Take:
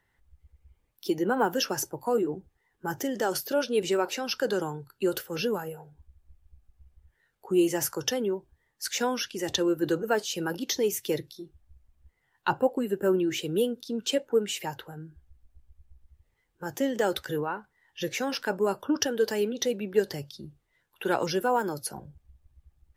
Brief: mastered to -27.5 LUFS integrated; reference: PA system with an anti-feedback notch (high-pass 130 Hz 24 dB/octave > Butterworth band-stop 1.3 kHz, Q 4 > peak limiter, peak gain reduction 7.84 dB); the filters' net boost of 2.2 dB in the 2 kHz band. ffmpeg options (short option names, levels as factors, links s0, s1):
-af "highpass=f=130:w=0.5412,highpass=f=130:w=1.3066,asuperstop=centerf=1300:order=8:qfactor=4,equalizer=f=2000:t=o:g=4.5,volume=1.41,alimiter=limit=0.158:level=0:latency=1"